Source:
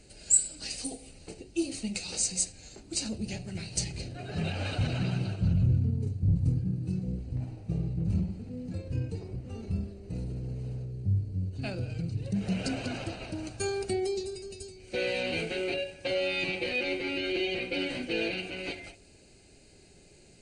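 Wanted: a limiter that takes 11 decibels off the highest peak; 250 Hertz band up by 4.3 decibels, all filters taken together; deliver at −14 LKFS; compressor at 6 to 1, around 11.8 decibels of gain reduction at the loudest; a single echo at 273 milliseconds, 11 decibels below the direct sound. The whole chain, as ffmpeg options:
ffmpeg -i in.wav -af "equalizer=frequency=250:width_type=o:gain=6.5,acompressor=threshold=-32dB:ratio=6,alimiter=level_in=5.5dB:limit=-24dB:level=0:latency=1,volume=-5.5dB,aecho=1:1:273:0.282,volume=24dB" out.wav

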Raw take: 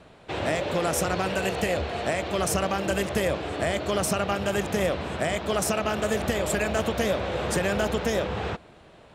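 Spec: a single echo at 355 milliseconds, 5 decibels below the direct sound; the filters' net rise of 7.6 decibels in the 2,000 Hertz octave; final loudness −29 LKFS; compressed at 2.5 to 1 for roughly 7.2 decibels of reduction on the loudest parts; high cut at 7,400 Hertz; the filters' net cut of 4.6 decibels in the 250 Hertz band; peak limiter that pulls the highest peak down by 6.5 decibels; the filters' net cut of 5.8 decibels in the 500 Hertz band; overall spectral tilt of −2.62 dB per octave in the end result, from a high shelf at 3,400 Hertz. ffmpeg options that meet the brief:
ffmpeg -i in.wav -af "lowpass=7400,equalizer=frequency=250:width_type=o:gain=-5,equalizer=frequency=500:width_type=o:gain=-7,equalizer=frequency=2000:width_type=o:gain=7.5,highshelf=frequency=3400:gain=8,acompressor=threshold=-31dB:ratio=2.5,alimiter=limit=-22dB:level=0:latency=1,aecho=1:1:355:0.562,volume=2.5dB" out.wav

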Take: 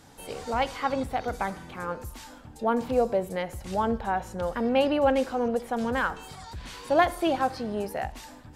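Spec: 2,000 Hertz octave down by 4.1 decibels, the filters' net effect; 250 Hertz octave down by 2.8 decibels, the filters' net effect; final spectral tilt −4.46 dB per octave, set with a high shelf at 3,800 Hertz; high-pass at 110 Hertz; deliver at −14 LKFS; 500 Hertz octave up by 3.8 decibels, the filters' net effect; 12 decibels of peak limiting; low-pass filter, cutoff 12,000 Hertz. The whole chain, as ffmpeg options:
ffmpeg -i in.wav -af "highpass=110,lowpass=12000,equalizer=frequency=250:width_type=o:gain=-4.5,equalizer=frequency=500:width_type=o:gain=5.5,equalizer=frequency=2000:width_type=o:gain=-4.5,highshelf=frequency=3800:gain=-6,volume=16dB,alimiter=limit=-3.5dB:level=0:latency=1" out.wav

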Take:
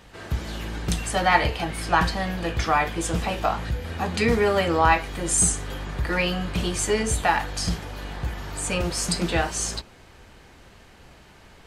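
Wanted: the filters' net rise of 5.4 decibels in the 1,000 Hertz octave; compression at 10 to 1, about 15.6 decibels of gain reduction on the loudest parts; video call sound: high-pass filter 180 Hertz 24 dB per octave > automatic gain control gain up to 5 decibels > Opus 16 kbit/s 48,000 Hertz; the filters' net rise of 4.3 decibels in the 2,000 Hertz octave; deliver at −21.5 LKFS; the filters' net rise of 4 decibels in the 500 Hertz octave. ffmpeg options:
ffmpeg -i in.wav -af "equalizer=frequency=500:width_type=o:gain=3.5,equalizer=frequency=1000:width_type=o:gain=5,equalizer=frequency=2000:width_type=o:gain=3.5,acompressor=threshold=-24dB:ratio=10,highpass=frequency=180:width=0.5412,highpass=frequency=180:width=1.3066,dynaudnorm=maxgain=5dB,volume=9dB" -ar 48000 -c:a libopus -b:a 16k out.opus

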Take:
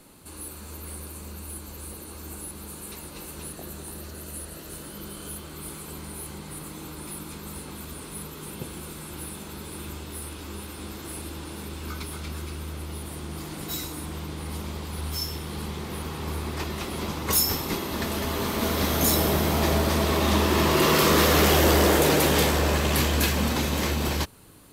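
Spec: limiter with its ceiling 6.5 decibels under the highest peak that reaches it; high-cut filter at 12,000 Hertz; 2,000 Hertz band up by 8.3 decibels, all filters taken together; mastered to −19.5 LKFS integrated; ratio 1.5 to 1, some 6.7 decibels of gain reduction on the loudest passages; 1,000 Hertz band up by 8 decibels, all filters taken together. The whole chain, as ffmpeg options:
ffmpeg -i in.wav -af "lowpass=12000,equalizer=frequency=1000:width_type=o:gain=7.5,equalizer=frequency=2000:width_type=o:gain=8,acompressor=threshold=-31dB:ratio=1.5,volume=11dB,alimiter=limit=-7dB:level=0:latency=1" out.wav

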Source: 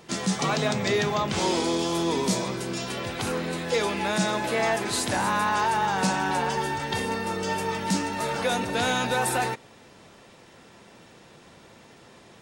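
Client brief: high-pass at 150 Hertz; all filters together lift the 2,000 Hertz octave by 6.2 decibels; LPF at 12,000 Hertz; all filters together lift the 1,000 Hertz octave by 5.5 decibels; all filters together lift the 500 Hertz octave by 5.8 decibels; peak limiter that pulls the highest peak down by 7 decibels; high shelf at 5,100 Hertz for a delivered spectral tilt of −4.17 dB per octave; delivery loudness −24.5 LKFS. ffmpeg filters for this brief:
ffmpeg -i in.wav -af "highpass=150,lowpass=12000,equalizer=frequency=500:width_type=o:gain=6,equalizer=frequency=1000:width_type=o:gain=3.5,equalizer=frequency=2000:width_type=o:gain=7.5,highshelf=frequency=5100:gain=-8,volume=-0.5dB,alimiter=limit=-15dB:level=0:latency=1" out.wav

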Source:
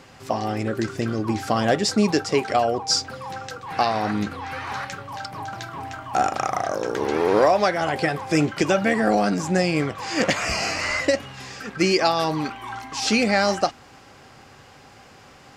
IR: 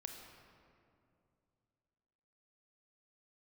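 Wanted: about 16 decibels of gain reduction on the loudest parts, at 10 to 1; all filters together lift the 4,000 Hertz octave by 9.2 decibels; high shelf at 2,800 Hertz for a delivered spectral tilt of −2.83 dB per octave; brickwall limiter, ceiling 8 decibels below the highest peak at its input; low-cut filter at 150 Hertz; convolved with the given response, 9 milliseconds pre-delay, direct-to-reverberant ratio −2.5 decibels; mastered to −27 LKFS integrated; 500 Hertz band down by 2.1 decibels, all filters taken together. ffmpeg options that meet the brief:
-filter_complex "[0:a]highpass=150,equalizer=frequency=500:width_type=o:gain=-3,highshelf=frequency=2800:gain=7.5,equalizer=frequency=4000:width_type=o:gain=5,acompressor=threshold=-25dB:ratio=10,alimiter=limit=-18dB:level=0:latency=1,asplit=2[link_01][link_02];[1:a]atrim=start_sample=2205,adelay=9[link_03];[link_02][link_03]afir=irnorm=-1:irlink=0,volume=6dB[link_04];[link_01][link_04]amix=inputs=2:normalize=0,volume=-1.5dB"

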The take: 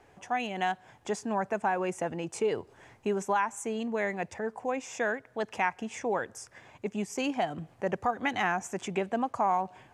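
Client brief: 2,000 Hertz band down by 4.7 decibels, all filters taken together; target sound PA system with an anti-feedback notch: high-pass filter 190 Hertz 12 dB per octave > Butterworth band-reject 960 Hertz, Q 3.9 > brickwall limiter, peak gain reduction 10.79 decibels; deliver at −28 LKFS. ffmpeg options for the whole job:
ffmpeg -i in.wav -af "highpass=190,asuperstop=centerf=960:order=8:qfactor=3.9,equalizer=frequency=2000:width_type=o:gain=-6,volume=11dB,alimiter=limit=-18dB:level=0:latency=1" out.wav

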